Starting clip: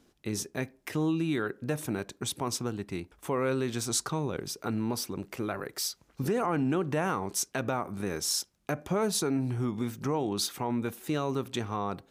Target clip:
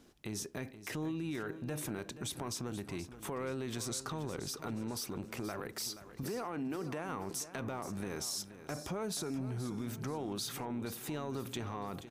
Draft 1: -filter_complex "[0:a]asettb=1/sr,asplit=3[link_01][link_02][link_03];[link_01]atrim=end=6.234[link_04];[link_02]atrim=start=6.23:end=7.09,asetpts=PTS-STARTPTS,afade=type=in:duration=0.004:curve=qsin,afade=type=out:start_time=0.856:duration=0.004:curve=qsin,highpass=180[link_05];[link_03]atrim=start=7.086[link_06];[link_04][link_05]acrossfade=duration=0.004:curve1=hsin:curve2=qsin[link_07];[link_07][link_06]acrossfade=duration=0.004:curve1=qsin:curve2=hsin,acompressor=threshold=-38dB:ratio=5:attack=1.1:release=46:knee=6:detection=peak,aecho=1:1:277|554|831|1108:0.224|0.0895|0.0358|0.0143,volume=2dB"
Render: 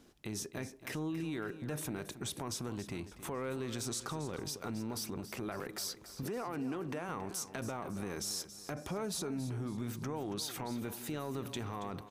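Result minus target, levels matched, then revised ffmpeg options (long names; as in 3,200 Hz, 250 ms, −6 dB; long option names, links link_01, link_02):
echo 201 ms early
-filter_complex "[0:a]asettb=1/sr,asplit=3[link_01][link_02][link_03];[link_01]atrim=end=6.234[link_04];[link_02]atrim=start=6.23:end=7.09,asetpts=PTS-STARTPTS,afade=type=in:duration=0.004:curve=qsin,afade=type=out:start_time=0.856:duration=0.004:curve=qsin,highpass=180[link_05];[link_03]atrim=start=7.086[link_06];[link_04][link_05]acrossfade=duration=0.004:curve1=hsin:curve2=qsin[link_07];[link_07][link_06]acrossfade=duration=0.004:curve1=qsin:curve2=hsin,acompressor=threshold=-38dB:ratio=5:attack=1.1:release=46:knee=6:detection=peak,aecho=1:1:478|956|1434|1912:0.224|0.0895|0.0358|0.0143,volume=2dB"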